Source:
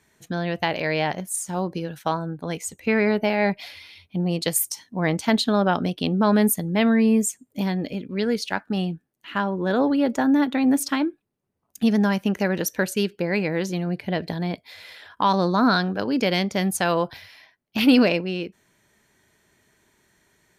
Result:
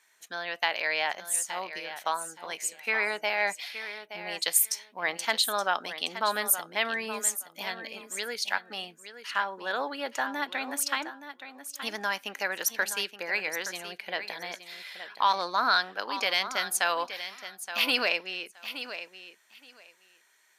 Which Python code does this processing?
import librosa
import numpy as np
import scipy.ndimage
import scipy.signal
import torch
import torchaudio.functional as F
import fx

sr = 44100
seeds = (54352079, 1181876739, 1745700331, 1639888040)

y = scipy.signal.sosfilt(scipy.signal.butter(2, 1000.0, 'highpass', fs=sr, output='sos'), x)
y = fx.echo_feedback(y, sr, ms=872, feedback_pct=16, wet_db=-11.5)